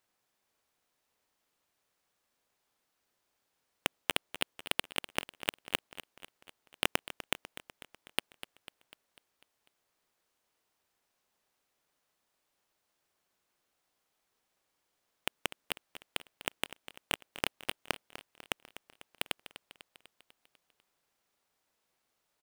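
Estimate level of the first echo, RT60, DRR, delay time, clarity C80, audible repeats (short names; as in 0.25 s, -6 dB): -14.0 dB, none, none, 0.248 s, none, 5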